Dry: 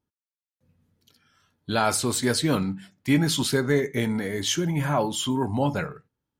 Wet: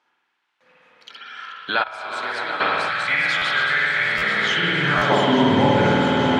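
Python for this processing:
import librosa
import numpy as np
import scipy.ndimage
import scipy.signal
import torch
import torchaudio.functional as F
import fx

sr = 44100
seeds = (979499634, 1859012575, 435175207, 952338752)

y = fx.reverse_delay_fb(x, sr, ms=433, feedback_pct=77, wet_db=-9.5)
y = scipy.signal.sosfilt(scipy.signal.butter(2, 2800.0, 'lowpass', fs=sr, output='sos'), y)
y = fx.rev_spring(y, sr, rt60_s=1.9, pass_ms=(51,), chirp_ms=65, drr_db=-5.5)
y = fx.filter_sweep_highpass(y, sr, from_hz=1200.0, to_hz=70.0, start_s=3.99, end_s=5.97, q=0.77)
y = fx.level_steps(y, sr, step_db=22, at=(1.82, 2.6), fade=0.02)
y = fx.spec_box(y, sr, start_s=2.89, length_s=2.21, low_hz=210.0, high_hz=1100.0, gain_db=-13)
y = fx.echo_swell(y, sr, ms=121, loudest=8, wet_db=-16.5)
y = fx.buffer_glitch(y, sr, at_s=(3.37, 4.17, 4.97), block=512, repeats=3)
y = fx.band_squash(y, sr, depth_pct=70)
y = F.gain(torch.from_numpy(y), 5.0).numpy()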